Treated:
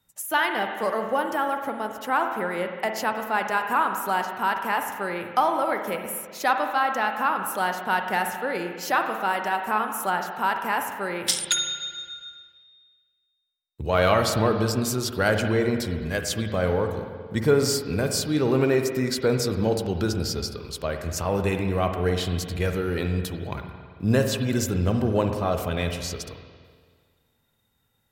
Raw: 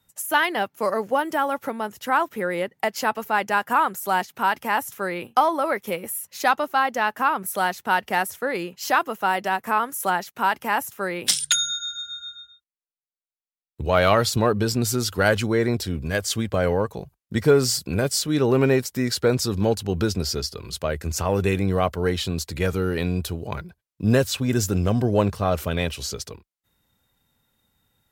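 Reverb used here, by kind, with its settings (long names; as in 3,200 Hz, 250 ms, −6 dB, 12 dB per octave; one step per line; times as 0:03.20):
spring reverb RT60 1.8 s, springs 46/55 ms, chirp 55 ms, DRR 5 dB
level −3 dB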